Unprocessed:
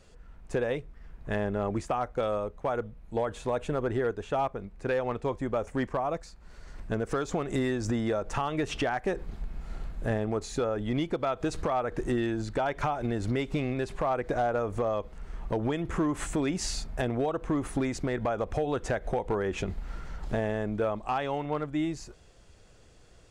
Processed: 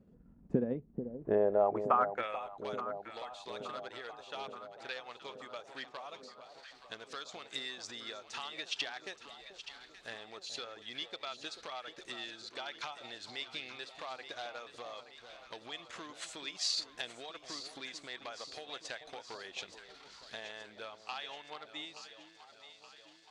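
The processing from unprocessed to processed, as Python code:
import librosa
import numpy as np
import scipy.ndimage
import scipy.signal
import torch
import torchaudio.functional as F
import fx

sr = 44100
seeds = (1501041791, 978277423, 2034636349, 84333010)

y = fx.transient(x, sr, attack_db=3, sustain_db=-7)
y = fx.filter_sweep_bandpass(y, sr, from_hz=220.0, to_hz=4100.0, start_s=1.01, end_s=2.63, q=3.0)
y = fx.echo_alternate(y, sr, ms=437, hz=910.0, feedback_pct=76, wet_db=-9.0)
y = y * librosa.db_to_amplitude(7.0)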